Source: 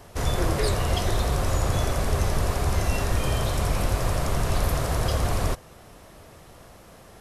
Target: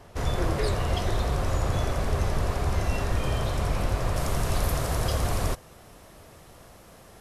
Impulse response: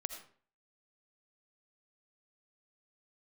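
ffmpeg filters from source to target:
-af "asetnsamples=n=441:p=0,asendcmd='4.16 highshelf g 2.5',highshelf=f=5.9k:g=-8,volume=-2dB"

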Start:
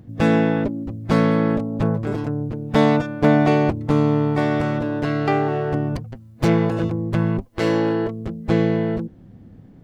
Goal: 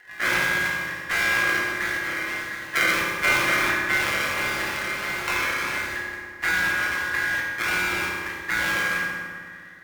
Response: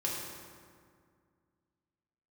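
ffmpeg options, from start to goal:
-filter_complex "[0:a]acrusher=samples=35:mix=1:aa=0.000001:lfo=1:lforange=35:lforate=1.5,aeval=exprs='val(0)*sin(2*PI*1800*n/s)':c=same[a];[1:a]atrim=start_sample=2205[b];[a][b]afir=irnorm=-1:irlink=0,volume=-5.5dB"

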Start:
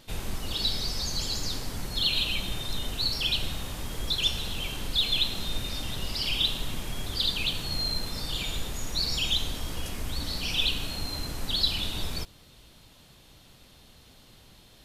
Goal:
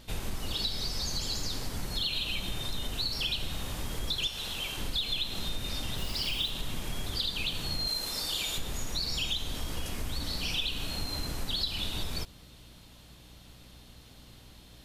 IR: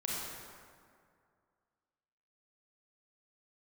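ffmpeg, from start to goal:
-filter_complex "[0:a]asettb=1/sr,asplit=3[a][b][c];[a]atrim=end=7.874[d];[b]atrim=start=7.87:end=8.58,asetpts=PTS-STARTPTS,afade=t=in:d=0.004:c=qsin,afade=t=out:st=0.706:d=0.004:c=qsin,bass=f=250:g=-11,treble=f=4k:g=6[e];[c]atrim=start=8.576[f];[d][e]acrossfade=d=0.004:c1=hsin:c2=qsin[g];[g][f]acrossfade=d=0.004:c1=qsin:c2=hsin,aeval=exprs='val(0)+0.00178*(sin(2*PI*60*n/s)+sin(2*PI*2*60*n/s)/2+sin(2*PI*3*60*n/s)/3+sin(2*PI*4*60*n/s)/4+sin(2*PI*5*60*n/s)/5)':c=same,asettb=1/sr,asplit=3[h][i][j];[h]atrim=end=4.274[k];[i]atrim=start=4.27:end=4.78,asetpts=PTS-STARTPTS,afade=t=in:d=0.004:c=qsin,afade=t=out:st=0.506:d=0.004:c=qsin,lowshelf=f=350:g=-9[l];[j]atrim=start=4.776[m];[k][l]acrossfade=d=0.004:c1=hsin:c2=qsin[n];[n][m]acrossfade=d=0.004:c1=qsin:c2=hsin,acompressor=threshold=-28dB:ratio=6,asplit=3[o][p][q];[o]afade=t=out:st=5.97:d=0.02[r];[p]acrusher=bits=6:mix=0:aa=0.5,afade=t=in:st=5.97:d=0.02,afade=t=out:st=6.49:d=0.02[s];[q]afade=t=in:st=6.49:d=0.02[t];[r][s][t]amix=inputs=3:normalize=0"

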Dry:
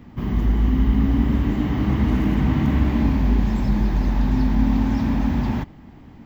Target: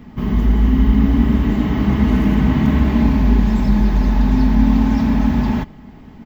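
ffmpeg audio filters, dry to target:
-af "aecho=1:1:4.7:0.37,volume=4dB"

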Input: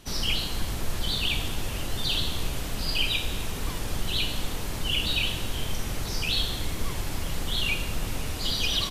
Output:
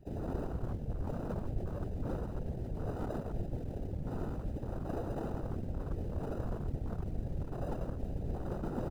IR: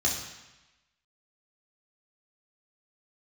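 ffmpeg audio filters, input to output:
-filter_complex "[0:a]highshelf=f=6.8k:g=3.5,asplit=2[a][b];[b]adelay=280,lowpass=f=2.5k:p=1,volume=-10.5dB,asplit=2[c][d];[d]adelay=280,lowpass=f=2.5k:p=1,volume=0.49,asplit=2[e][f];[f]adelay=280,lowpass=f=2.5k:p=1,volume=0.49,asplit=2[g][h];[h]adelay=280,lowpass=f=2.5k:p=1,volume=0.49,asplit=2[i][j];[j]adelay=280,lowpass=f=2.5k:p=1,volume=0.49[k];[a][c][e][g][i][k]amix=inputs=6:normalize=0,acrossover=split=500|3300[l][m][n];[n]asoftclip=type=tanh:threshold=-29.5dB[o];[l][m][o]amix=inputs=3:normalize=0,acrusher=samples=40:mix=1:aa=0.000001,areverse,acompressor=threshold=-33dB:ratio=16,areverse,afftfilt=real='hypot(re,im)*cos(2*PI*random(0))':imag='hypot(re,im)*sin(2*PI*random(1))':win_size=512:overlap=0.75,afwtdn=0.00316,volume=7.5dB"

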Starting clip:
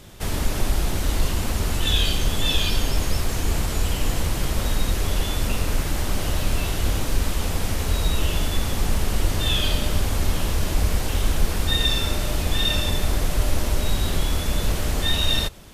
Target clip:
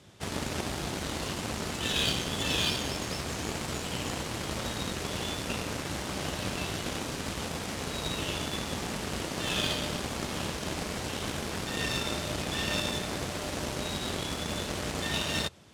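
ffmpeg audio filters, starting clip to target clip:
-af "highpass=f=79:w=0.5412,highpass=f=79:w=1.3066,afftfilt=real='re*lt(hypot(re,im),0.316)':imag='im*lt(hypot(re,im),0.316)':win_size=1024:overlap=0.75,lowpass=8.3k,aeval=exprs='0.224*(cos(1*acos(clip(val(0)/0.224,-1,1)))-cos(1*PI/2))+0.0112*(cos(3*acos(clip(val(0)/0.224,-1,1)))-cos(3*PI/2))+0.0158*(cos(7*acos(clip(val(0)/0.224,-1,1)))-cos(7*PI/2))':c=same"

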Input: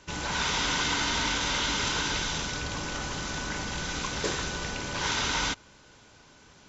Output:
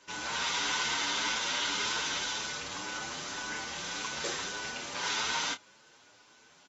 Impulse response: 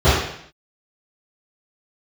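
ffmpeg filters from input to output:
-filter_complex "[0:a]highpass=f=520:p=1,asplit=2[a][b];[b]adelay=27,volume=-10.5dB[c];[a][c]amix=inputs=2:normalize=0,asplit=2[d][e];[e]adelay=7.8,afreqshift=1.8[f];[d][f]amix=inputs=2:normalize=1"

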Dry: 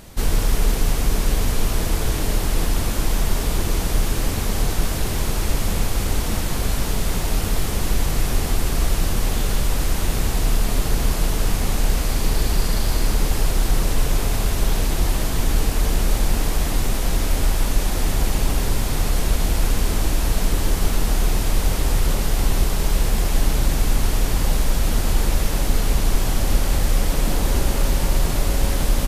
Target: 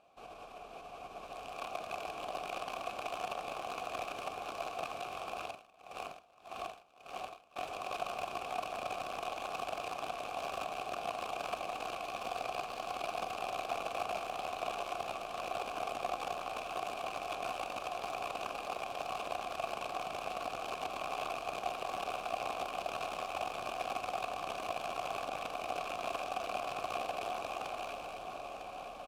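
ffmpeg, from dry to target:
-filter_complex "[0:a]bandreject=f=50:t=h:w=6,bandreject=f=100:t=h:w=6,bandreject=f=150:t=h:w=6,bandreject=f=200:t=h:w=6,bandreject=f=250:t=h:w=6,alimiter=limit=-13.5dB:level=0:latency=1:release=23,dynaudnorm=f=240:g=11:m=4dB,aeval=exprs='(mod(3.76*val(0)+1,2)-1)/3.76':c=same,asplit=3[a][b][c];[a]bandpass=f=730:t=q:w=8,volume=0dB[d];[b]bandpass=f=1.09k:t=q:w=8,volume=-6dB[e];[c]bandpass=f=2.44k:t=q:w=8,volume=-9dB[f];[d][e][f]amix=inputs=3:normalize=0,aecho=1:1:952|1904|2856|3808|4760|5712:0.335|0.184|0.101|0.0557|0.0307|0.0169,asettb=1/sr,asplit=3[g][h][i];[g]atrim=end=5.434[j];[h]atrim=start=5.43:end=7.56,asetpts=PTS-STARTPTS,afade=t=in:d=0.004:c=qsin,afade=t=out:st=2.126:d=0.004:c=qsin,aeval=exprs='val(0)*pow(10,-25*(0.5-0.5*cos(2*PI*1.7*n/s))/20)':c=same[k];[i]atrim=start=7.556[l];[j][k]acrossfade=d=0.004:c1=hsin:c2=qsin[m];[m][l]acrossfade=d=0.004:c1=qsin:c2=hsin,volume=-6.5dB"

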